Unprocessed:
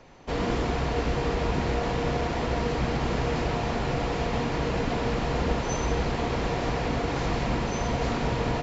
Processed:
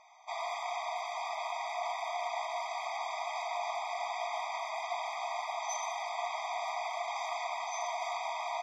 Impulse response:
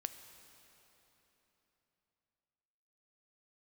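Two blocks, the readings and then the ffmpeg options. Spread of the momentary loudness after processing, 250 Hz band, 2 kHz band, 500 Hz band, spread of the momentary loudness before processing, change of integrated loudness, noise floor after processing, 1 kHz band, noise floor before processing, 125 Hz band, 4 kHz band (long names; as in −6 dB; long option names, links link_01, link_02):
1 LU, below −40 dB, −6.5 dB, −11.5 dB, 1 LU, −8.5 dB, −40 dBFS, −2.5 dB, −30 dBFS, below −40 dB, −6.5 dB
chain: -af "asoftclip=type=hard:threshold=-20.5dB,afftfilt=real='re*eq(mod(floor(b*sr/1024/640),2),1)':imag='im*eq(mod(floor(b*sr/1024/640),2),1)':win_size=1024:overlap=0.75,volume=-2dB"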